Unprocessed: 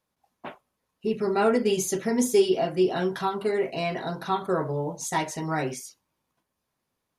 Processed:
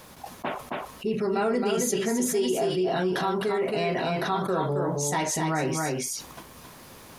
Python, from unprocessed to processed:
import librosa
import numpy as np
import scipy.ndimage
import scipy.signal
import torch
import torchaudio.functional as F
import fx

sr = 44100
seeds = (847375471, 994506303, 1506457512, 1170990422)

p1 = x + fx.echo_single(x, sr, ms=269, db=-6.0, dry=0)
p2 = fx.env_flatten(p1, sr, amount_pct=70)
y = F.gain(torch.from_numpy(p2), -7.5).numpy()